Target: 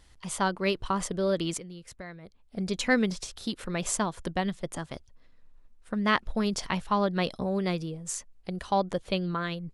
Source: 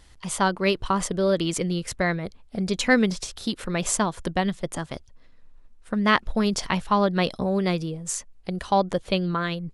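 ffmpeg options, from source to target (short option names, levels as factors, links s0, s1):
-filter_complex "[0:a]asettb=1/sr,asplit=3[s0][s1][s2];[s0]atrim=end=1.574[s3];[s1]atrim=start=1.57:end=2.57,asetpts=PTS-STARTPTS,afade=t=in:d=0.004:c=qsin,afade=t=out:st=0.996:d=0.004:c=qsin,acompressor=threshold=0.00501:ratio=2[s4];[s2]atrim=start=2.566[s5];[s3][s4]acrossfade=d=0.004:c1=hsin:c2=qsin[s6];[s6][s5]acrossfade=d=0.004:c1=qsin:c2=hsin,volume=0.562"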